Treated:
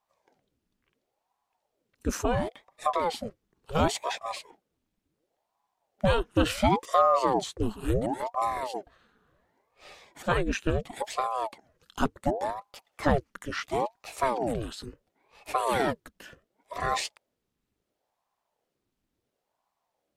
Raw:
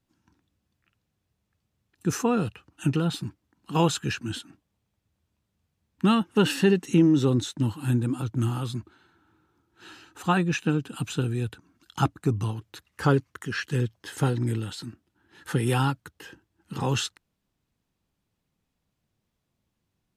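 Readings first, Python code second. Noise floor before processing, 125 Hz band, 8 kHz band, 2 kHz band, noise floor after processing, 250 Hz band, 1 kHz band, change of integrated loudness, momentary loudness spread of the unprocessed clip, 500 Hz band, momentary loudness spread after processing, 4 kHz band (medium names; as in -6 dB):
-79 dBFS, -10.0 dB, -3.0 dB, -1.5 dB, -82 dBFS, -7.5 dB, +5.0 dB, -3.0 dB, 14 LU, +0.5 dB, 13 LU, -3.0 dB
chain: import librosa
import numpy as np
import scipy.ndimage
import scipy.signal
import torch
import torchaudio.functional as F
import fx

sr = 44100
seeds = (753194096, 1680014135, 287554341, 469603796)

y = fx.ring_lfo(x, sr, carrier_hz=510.0, swing_pct=80, hz=0.71)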